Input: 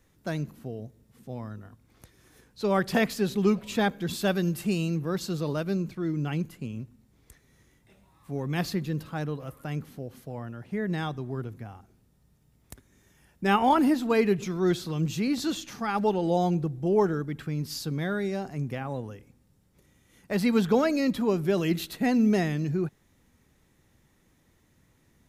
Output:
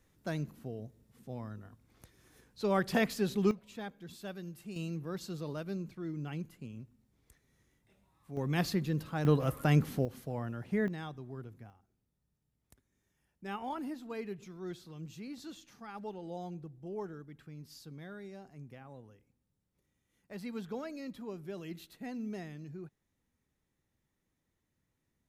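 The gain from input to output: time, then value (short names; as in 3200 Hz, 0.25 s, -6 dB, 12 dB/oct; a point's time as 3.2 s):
-5 dB
from 3.51 s -17.5 dB
from 4.76 s -10 dB
from 8.37 s -2.5 dB
from 9.25 s +7 dB
from 10.05 s -0.5 dB
from 10.88 s -11 dB
from 11.7 s -17.5 dB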